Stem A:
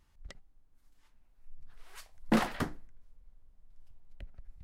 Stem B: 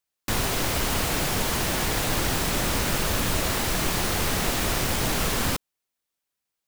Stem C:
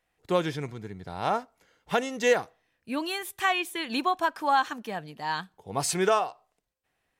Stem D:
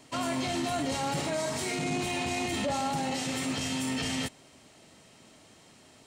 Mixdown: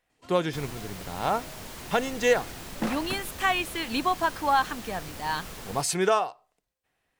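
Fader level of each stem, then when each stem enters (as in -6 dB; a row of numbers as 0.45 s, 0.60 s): -3.0 dB, -16.0 dB, +0.5 dB, -19.5 dB; 0.50 s, 0.25 s, 0.00 s, 0.10 s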